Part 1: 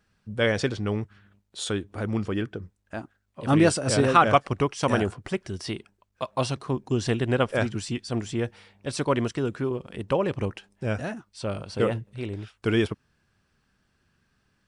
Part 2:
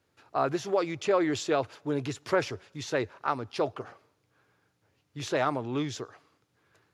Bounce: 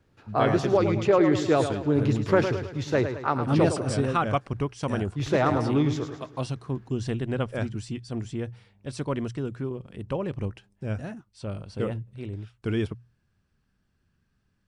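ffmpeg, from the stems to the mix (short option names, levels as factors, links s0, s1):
-filter_complex "[0:a]bandreject=f=60:t=h:w=6,bandreject=f=120:t=h:w=6,volume=0.376[s0];[1:a]highshelf=f=4900:g=-9,volume=1.33,asplit=2[s1][s2];[s2]volume=0.376,aecho=0:1:107|214|321|428|535|642:1|0.46|0.212|0.0973|0.0448|0.0206[s3];[s0][s1][s3]amix=inputs=3:normalize=0,lowshelf=f=250:g=10.5"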